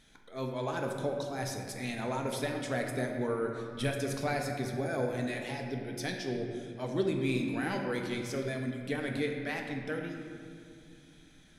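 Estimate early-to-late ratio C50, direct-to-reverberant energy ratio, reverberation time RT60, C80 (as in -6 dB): 3.5 dB, 1.5 dB, 2.2 s, 5.0 dB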